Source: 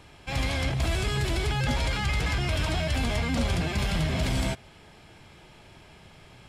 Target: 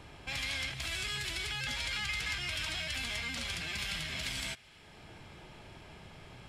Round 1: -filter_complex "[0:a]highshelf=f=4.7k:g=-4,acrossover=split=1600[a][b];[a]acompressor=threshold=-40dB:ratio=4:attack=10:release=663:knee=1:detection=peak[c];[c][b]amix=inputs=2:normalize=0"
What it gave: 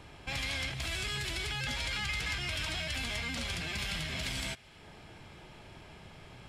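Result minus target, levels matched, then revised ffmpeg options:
compressor: peak gain reduction -5 dB
-filter_complex "[0:a]highshelf=f=4.7k:g=-4,acrossover=split=1600[a][b];[a]acompressor=threshold=-46.5dB:ratio=4:attack=10:release=663:knee=1:detection=peak[c];[c][b]amix=inputs=2:normalize=0"

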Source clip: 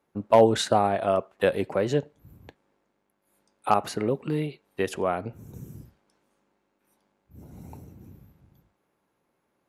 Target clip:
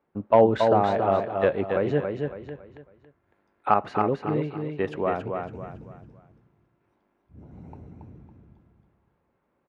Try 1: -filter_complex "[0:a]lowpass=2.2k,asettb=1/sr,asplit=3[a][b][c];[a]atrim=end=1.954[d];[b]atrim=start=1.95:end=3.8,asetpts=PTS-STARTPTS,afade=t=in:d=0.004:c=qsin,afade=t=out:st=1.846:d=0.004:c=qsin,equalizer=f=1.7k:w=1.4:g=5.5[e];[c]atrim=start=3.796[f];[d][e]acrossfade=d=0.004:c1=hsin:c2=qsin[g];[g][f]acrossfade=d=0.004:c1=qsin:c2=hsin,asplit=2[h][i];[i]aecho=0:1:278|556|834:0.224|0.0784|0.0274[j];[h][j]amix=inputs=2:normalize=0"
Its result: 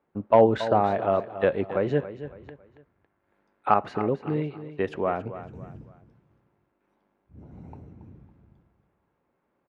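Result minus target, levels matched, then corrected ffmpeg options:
echo-to-direct -8 dB
-filter_complex "[0:a]lowpass=2.2k,asettb=1/sr,asplit=3[a][b][c];[a]atrim=end=1.954[d];[b]atrim=start=1.95:end=3.8,asetpts=PTS-STARTPTS,afade=t=in:d=0.004:c=qsin,afade=t=out:st=1.846:d=0.004:c=qsin,equalizer=f=1.7k:w=1.4:g=5.5[e];[c]atrim=start=3.796[f];[d][e]acrossfade=d=0.004:c1=hsin:c2=qsin[g];[g][f]acrossfade=d=0.004:c1=qsin:c2=hsin,asplit=2[h][i];[i]aecho=0:1:278|556|834|1112:0.562|0.197|0.0689|0.0241[j];[h][j]amix=inputs=2:normalize=0"

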